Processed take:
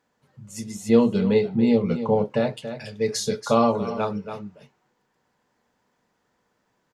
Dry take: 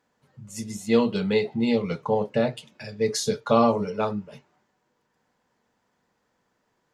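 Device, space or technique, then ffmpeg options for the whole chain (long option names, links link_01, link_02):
ducked delay: -filter_complex "[0:a]asplit=3[link_01][link_02][link_03];[link_02]adelay=282,volume=-4.5dB[link_04];[link_03]apad=whole_len=318286[link_05];[link_04][link_05]sidechaincompress=threshold=-29dB:ratio=4:attack=25:release=745[link_06];[link_01][link_06]amix=inputs=2:normalize=0,asettb=1/sr,asplit=3[link_07][link_08][link_09];[link_07]atrim=end=0.894[link_10];[link_08]atrim=start=0.89:end=2.3,asetpts=PTS-STARTPTS,afade=type=in:duration=0.004:curve=qsin,afade=type=out:start_time=1.406:duration=0.004:curve=qsin,tiltshelf=frequency=880:gain=5[link_11];[link_09]atrim=start=2.296[link_12];[link_10][link_11]acrossfade=duration=0.004:curve1=hsin:curve2=qsin[link_13];[link_13][link_12]acrossfade=duration=0.004:curve1=qsin:curve2=hsin"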